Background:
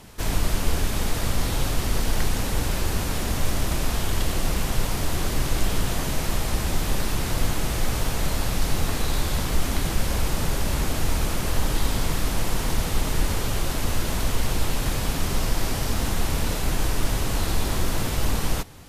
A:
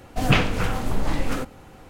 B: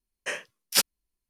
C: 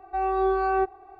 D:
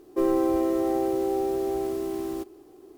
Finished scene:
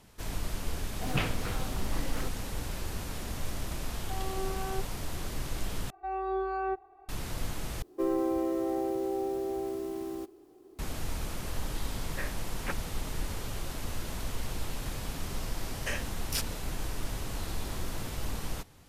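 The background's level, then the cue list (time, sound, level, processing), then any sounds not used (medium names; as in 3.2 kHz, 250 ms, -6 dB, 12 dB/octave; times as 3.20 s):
background -11.5 dB
0.85 s: add A -12 dB
3.96 s: add C -15.5 dB + peaking EQ 250 Hz +7.5 dB
5.90 s: replace with C -8.5 dB
7.82 s: replace with D -6 dB
11.91 s: add B -6 dB + steep low-pass 2.3 kHz
15.60 s: add B -1 dB + compression, threshold -28 dBFS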